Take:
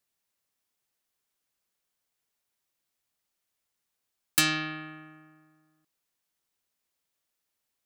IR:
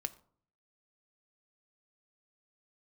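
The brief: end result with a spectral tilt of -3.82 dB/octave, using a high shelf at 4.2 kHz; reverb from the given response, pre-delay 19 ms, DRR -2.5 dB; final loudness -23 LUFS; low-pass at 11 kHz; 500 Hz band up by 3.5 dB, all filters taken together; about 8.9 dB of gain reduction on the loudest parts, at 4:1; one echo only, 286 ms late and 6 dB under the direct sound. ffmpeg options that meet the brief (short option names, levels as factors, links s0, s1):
-filter_complex "[0:a]lowpass=11000,equalizer=f=500:t=o:g=6,highshelf=f=4200:g=-3.5,acompressor=threshold=0.0282:ratio=4,aecho=1:1:286:0.501,asplit=2[s0][s1];[1:a]atrim=start_sample=2205,adelay=19[s2];[s1][s2]afir=irnorm=-1:irlink=0,volume=1.41[s3];[s0][s3]amix=inputs=2:normalize=0,volume=2.37"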